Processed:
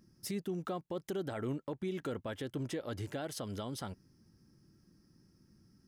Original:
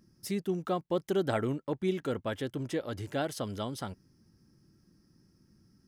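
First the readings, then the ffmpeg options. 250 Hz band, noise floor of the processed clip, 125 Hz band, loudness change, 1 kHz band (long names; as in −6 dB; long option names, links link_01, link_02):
−5.5 dB, −69 dBFS, −4.5 dB, −6.0 dB, −7.5 dB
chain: -af "alimiter=level_in=4dB:limit=-24dB:level=0:latency=1:release=116,volume=-4dB,volume=-1dB"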